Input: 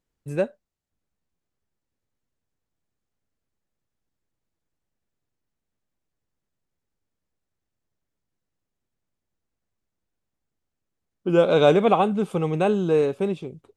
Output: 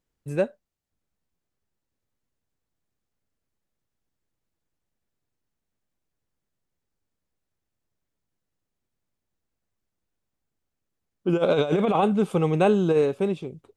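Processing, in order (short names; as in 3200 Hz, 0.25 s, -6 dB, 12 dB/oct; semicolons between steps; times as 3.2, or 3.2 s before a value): 11.28–12.97 negative-ratio compressor -19 dBFS, ratio -0.5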